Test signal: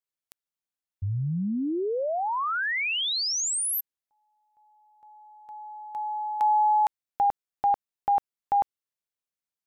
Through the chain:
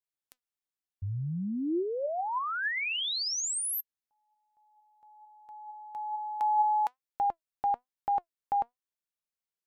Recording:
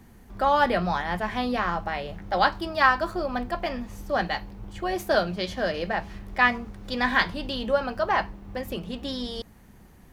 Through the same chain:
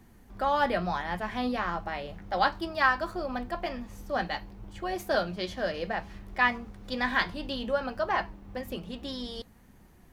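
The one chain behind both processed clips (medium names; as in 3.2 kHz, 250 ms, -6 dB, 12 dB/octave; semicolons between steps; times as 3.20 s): flange 1.1 Hz, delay 2.7 ms, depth 1.6 ms, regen +82%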